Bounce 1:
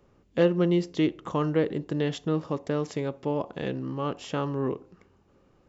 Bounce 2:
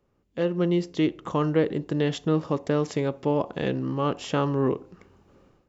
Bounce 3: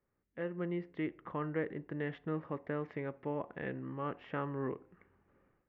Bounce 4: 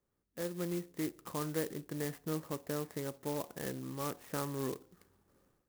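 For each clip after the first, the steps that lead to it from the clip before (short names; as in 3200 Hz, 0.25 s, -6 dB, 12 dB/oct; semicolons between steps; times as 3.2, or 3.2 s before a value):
AGC gain up to 15 dB; gain -9 dB
ladder low-pass 2200 Hz, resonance 55%; gain -4 dB
clock jitter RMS 0.092 ms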